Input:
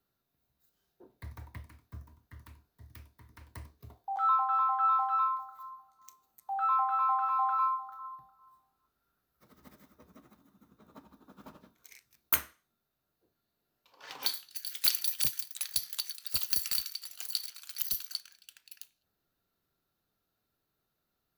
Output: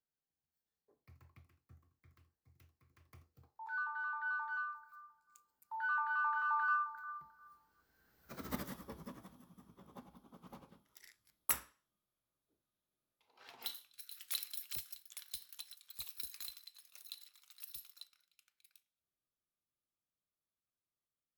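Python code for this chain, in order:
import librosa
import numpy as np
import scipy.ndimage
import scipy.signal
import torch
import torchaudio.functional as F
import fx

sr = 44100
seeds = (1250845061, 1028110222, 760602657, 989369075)

y = fx.doppler_pass(x, sr, speed_mps=41, closest_m=8.7, pass_at_s=8.52)
y = y * librosa.db_to_amplitude(15.0)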